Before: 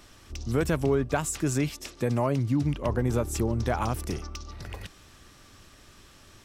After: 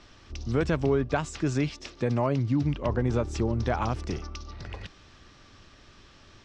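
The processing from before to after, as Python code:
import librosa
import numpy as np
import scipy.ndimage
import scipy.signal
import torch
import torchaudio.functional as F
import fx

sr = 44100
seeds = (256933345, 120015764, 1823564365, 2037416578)

y = scipy.signal.sosfilt(scipy.signal.butter(4, 5700.0, 'lowpass', fs=sr, output='sos'), x)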